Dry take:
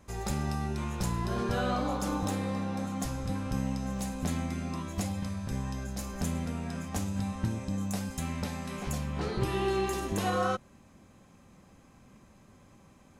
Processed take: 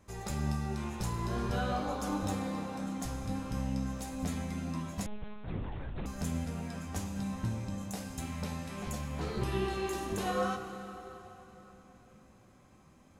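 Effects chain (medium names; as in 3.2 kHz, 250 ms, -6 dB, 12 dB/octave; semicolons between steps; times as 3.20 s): flange 0.45 Hz, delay 9.4 ms, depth 9.7 ms, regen +50%; plate-style reverb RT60 4 s, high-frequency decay 0.8×, DRR 7 dB; 5.06–6.06 s: monotone LPC vocoder at 8 kHz 210 Hz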